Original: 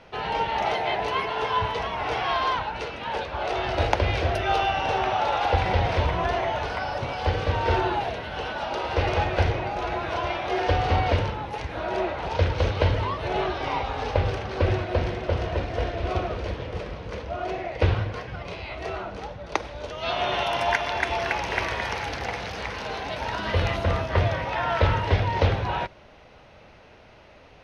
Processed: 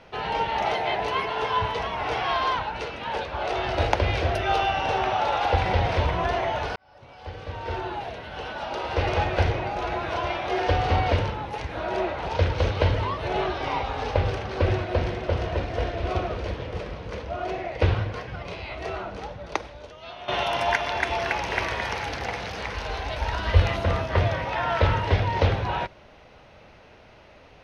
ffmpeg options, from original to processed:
ffmpeg -i in.wav -filter_complex "[0:a]asplit=3[link_01][link_02][link_03];[link_01]afade=type=out:start_time=22.74:duration=0.02[link_04];[link_02]asubboost=boost=7.5:cutoff=62,afade=type=in:start_time=22.74:duration=0.02,afade=type=out:start_time=23.61:duration=0.02[link_05];[link_03]afade=type=in:start_time=23.61:duration=0.02[link_06];[link_04][link_05][link_06]amix=inputs=3:normalize=0,asplit=3[link_07][link_08][link_09];[link_07]atrim=end=6.76,asetpts=PTS-STARTPTS,afade=type=out:start_time=6.756:duration=0.004:curve=hsin[link_10];[link_08]atrim=start=6.76:end=20.28,asetpts=PTS-STARTPTS,afade=type=in:duration=2.45,afade=type=out:start_time=12.7:duration=0.82:curve=qua:silence=0.188365[link_11];[link_09]atrim=start=20.28,asetpts=PTS-STARTPTS,afade=type=in:duration=0.004:curve=hsin:silence=0.188365[link_12];[link_10][link_11][link_12]concat=n=3:v=0:a=1" out.wav

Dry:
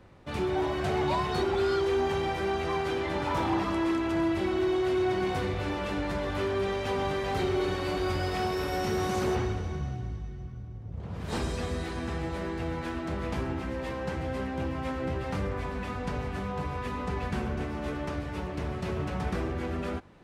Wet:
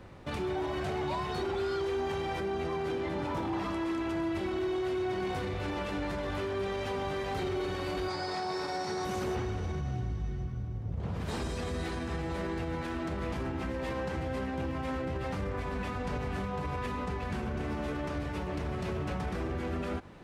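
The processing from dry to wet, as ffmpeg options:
ffmpeg -i in.wav -filter_complex "[0:a]asettb=1/sr,asplit=3[link_01][link_02][link_03];[link_01]atrim=end=2.404[link_04];[link_02]atrim=start=2.4:end=3.53,asetpts=PTS-STARTPTS,afade=type=in:duration=0.004:curve=qsin,afade=type=out:start_time=1.126:duration=0.004:curve=qsin,equalizer=frequency=220:width_type=o:width=2.6:gain=7[link_05];[link_03]atrim=start=3.526[link_06];[link_04][link_05]acrossfade=duration=0.004:curve1=hsin:curve2=qsin[link_07];[link_07][link_06]acrossfade=duration=0.004:curve1=qsin:curve2=hsin,asettb=1/sr,asplit=3[link_08][link_09][link_10];[link_08]atrim=end=8.084[link_11];[link_09]atrim=start=8.08:end=9.05,asetpts=PTS-STARTPTS,afade=type=in:duration=0.004:curve=qsin,afade=type=out:start_time=0.966:duration=0.004:curve=qsin,highpass=170,equalizer=frequency=240:width_type=q:width=4:gain=-8,equalizer=frequency=490:width_type=q:width=4:gain=-4,equalizer=frequency=860:width_type=q:width=4:gain=6,equalizer=frequency=2900:width_type=q:width=4:gain=-9,equalizer=frequency=4500:width_type=q:width=4:gain=9,lowpass=frequency=9400:width=0.5412,lowpass=frequency=9400:width=1.3066[link_12];[link_10]atrim=start=9.046[link_13];[link_11][link_12]acrossfade=duration=0.004:curve1=hsin:curve2=qsin[link_14];[link_14][link_13]acrossfade=duration=0.004:curve1=qsin:curve2=hsin,alimiter=level_in=7dB:limit=-24dB:level=0:latency=1:release=93,volume=-7dB,volume=4.5dB" out.wav

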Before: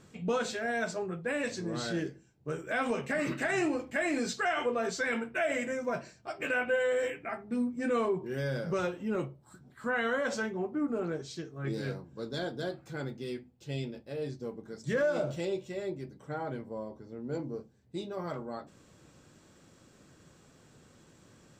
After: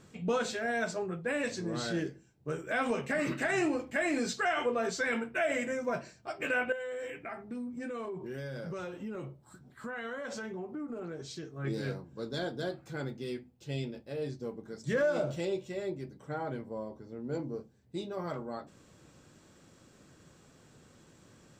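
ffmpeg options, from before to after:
ffmpeg -i in.wav -filter_complex "[0:a]asettb=1/sr,asplit=3[link_01][link_02][link_03];[link_01]atrim=end=6.724[link_04];[link_02]atrim=start=6.72:end=11.43,asetpts=PTS-STARTPTS,afade=type=in:duration=0.004:curve=qsin,afade=type=out:start_time=4.706:duration=0.004:curve=qsin,acompressor=threshold=-36dB:ratio=6:attack=3.2:release=140:knee=1:detection=peak[link_05];[link_03]atrim=start=11.426[link_06];[link_04][link_05]acrossfade=duration=0.004:curve1=hsin:curve2=qsin[link_07];[link_07][link_06]acrossfade=duration=0.004:curve1=qsin:curve2=hsin" out.wav

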